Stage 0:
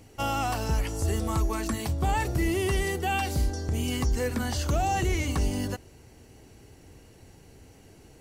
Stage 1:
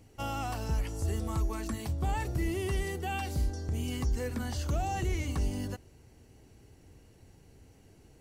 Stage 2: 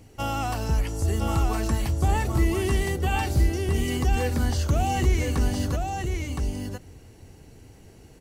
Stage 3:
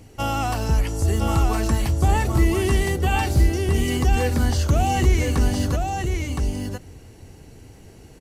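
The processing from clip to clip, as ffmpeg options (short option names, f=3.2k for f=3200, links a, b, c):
-af "lowshelf=f=250:g=4.5,volume=-8dB"
-af "aecho=1:1:1016:0.631,volume=7dB"
-af "aresample=32000,aresample=44100,volume=4dB"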